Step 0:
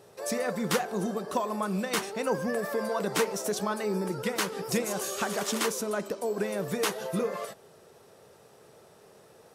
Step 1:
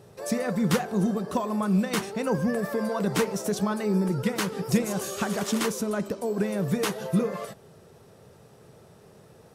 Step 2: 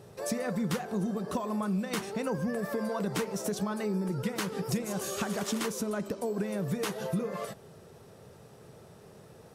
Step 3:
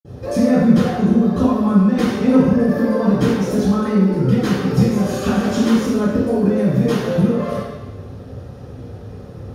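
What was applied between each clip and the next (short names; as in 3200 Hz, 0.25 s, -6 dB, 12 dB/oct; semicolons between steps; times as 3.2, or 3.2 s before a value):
tone controls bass +12 dB, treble -1 dB
compressor 3:1, threshold -30 dBFS, peak gain reduction 10 dB
reverb RT60 1.1 s, pre-delay 47 ms; gain -1 dB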